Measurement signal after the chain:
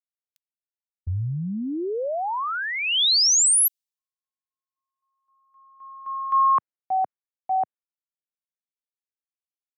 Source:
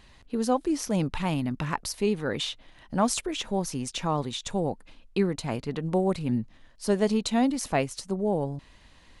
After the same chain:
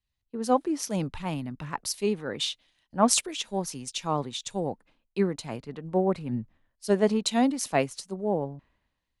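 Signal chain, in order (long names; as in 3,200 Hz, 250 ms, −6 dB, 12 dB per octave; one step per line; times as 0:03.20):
low-shelf EQ 78 Hz −11.5 dB
multiband upward and downward expander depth 100%
level −1 dB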